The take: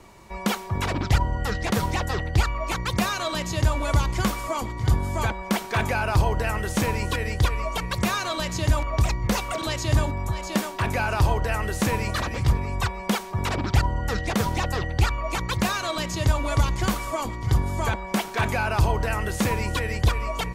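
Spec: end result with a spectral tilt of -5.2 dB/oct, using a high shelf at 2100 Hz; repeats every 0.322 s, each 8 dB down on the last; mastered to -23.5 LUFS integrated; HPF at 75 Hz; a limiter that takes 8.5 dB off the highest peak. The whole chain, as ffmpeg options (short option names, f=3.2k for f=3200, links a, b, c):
-af "highpass=75,highshelf=f=2.1k:g=-7.5,alimiter=limit=-17.5dB:level=0:latency=1,aecho=1:1:322|644|966|1288|1610:0.398|0.159|0.0637|0.0255|0.0102,volume=5dB"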